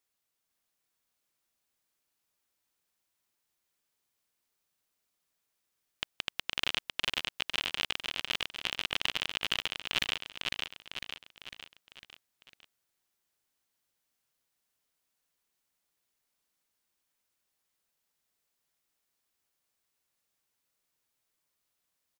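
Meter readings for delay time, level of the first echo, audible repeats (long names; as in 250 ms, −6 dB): 502 ms, −3.5 dB, 5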